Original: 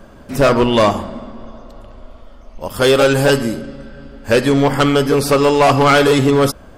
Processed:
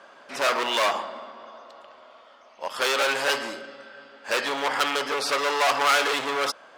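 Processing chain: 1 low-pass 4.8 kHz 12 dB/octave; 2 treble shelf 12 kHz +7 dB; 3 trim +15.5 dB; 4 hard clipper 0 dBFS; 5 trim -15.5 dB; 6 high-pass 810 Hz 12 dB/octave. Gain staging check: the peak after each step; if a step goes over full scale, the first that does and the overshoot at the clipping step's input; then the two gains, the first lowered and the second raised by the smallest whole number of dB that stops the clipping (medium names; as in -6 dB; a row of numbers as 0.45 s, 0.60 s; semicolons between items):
-6.0 dBFS, -6.0 dBFS, +9.5 dBFS, 0.0 dBFS, -15.5 dBFS, -9.0 dBFS; step 3, 9.5 dB; step 3 +5.5 dB, step 5 -5.5 dB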